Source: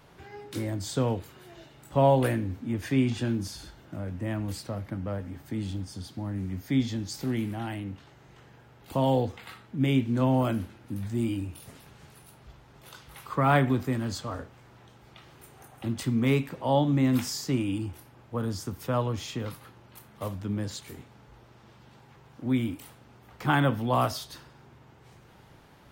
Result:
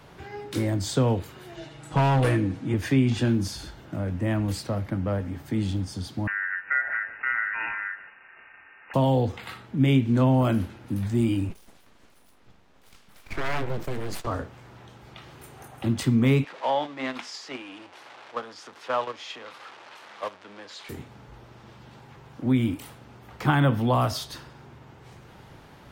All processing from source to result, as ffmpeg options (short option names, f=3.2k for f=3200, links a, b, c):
-filter_complex "[0:a]asettb=1/sr,asplit=3[a][b][c];[a]atrim=end=1.564[d];[b]atrim=start=1.56:end=2.74,asetpts=PTS-STARTPTS,afade=t=in:d=0.004:c=qsin,afade=t=out:st=1.176:d=0.004:c=qsin,lowpass=f=11k:w=0.5412,lowpass=f=11k:w=1.3066,aecho=1:1:6.3:0.75,atrim=end_sample=52038,asoftclip=type=hard:threshold=-22.5dB[e];[c]atrim=start=2.736[f];[d][e]acrossfade=d=0.004:c1=hsin:c2=qsin[g];[g][f]acrossfade=d=0.004:c1=qsin:c2=hsin,asettb=1/sr,asplit=3[h][i][j];[h]atrim=end=6.274[k];[i]atrim=start=6.27:end=8.94,asetpts=PTS-STARTPTS,afade=t=in:d=0.004:c=qsin,afade=t=out:st=2.666:d=0.004:c=qsin,aeval=exprs='val(0)*sin(2*PI*1200*n/s)':c=same,aecho=1:1:151:0.188,atrim=end_sample=117747,lowpass=f=2.5k:t=q:w=0.5098,lowpass=f=2.5k:t=q:w=0.6013,lowpass=f=2.5k:t=q:w=0.9,lowpass=f=2.5k:t=q:w=2.563,afreqshift=-2900[l];[j]atrim=start=8.936[m];[k][l]acrossfade=d=0.004:c1=hsin:c2=qsin[n];[n][m]acrossfade=d=0.004:c1=qsin:c2=hsin,asettb=1/sr,asplit=3[o][p][q];[o]atrim=end=11.494[r];[p]atrim=start=11.49:end=14.27,asetpts=PTS-STARTPTS,afade=t=in:d=0.004:c=qsin,afade=t=out:st=2.776:d=0.004:c=qsin,agate=range=-9dB:threshold=-43dB:ratio=16:release=100:detection=peak,acompressor=threshold=-32dB:ratio=2.5:attack=3.2:release=140:knee=1:detection=peak,aeval=exprs='abs(val(0))':c=same[s];[q]atrim=start=14.266[t];[r][s]acrossfade=d=0.004:c1=hsin:c2=qsin[u];[u][t]acrossfade=d=0.004:c1=qsin:c2=hsin,asettb=1/sr,asplit=3[v][w][x];[v]atrim=end=16.444[y];[w]atrim=start=16.44:end=20.89,asetpts=PTS-STARTPTS,afade=t=in:d=0.004:c=qsin,afade=t=out:st=4.446:d=0.004:c=qsin,aeval=exprs='val(0)+0.5*0.0188*sgn(val(0))':c=same,highpass=650,lowpass=4.2k,agate=range=-8dB:threshold=-37dB:ratio=16:release=100:detection=peak[z];[x]atrim=start=20.886[aa];[y][z]acrossfade=d=0.004:c1=hsin:c2=qsin[ab];[ab][aa]acrossfade=d=0.004:c1=qsin:c2=hsin,highshelf=f=8.6k:g=-5,acrossover=split=170[ac][ad];[ad]acompressor=threshold=-26dB:ratio=6[ae];[ac][ae]amix=inputs=2:normalize=0,volume=6dB"